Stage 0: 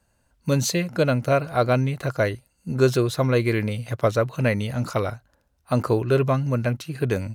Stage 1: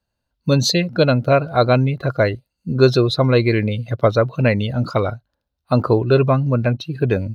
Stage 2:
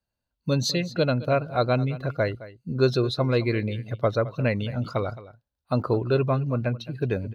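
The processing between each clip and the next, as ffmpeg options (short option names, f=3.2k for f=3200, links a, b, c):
-af "afftdn=nr=16:nf=-35,equalizer=f=2k:t=o:w=1:g=-3,equalizer=f=4k:t=o:w=1:g=10,equalizer=f=8k:t=o:w=1:g=-10,volume=5.5dB"
-af "aecho=1:1:216:0.141,volume=-8dB"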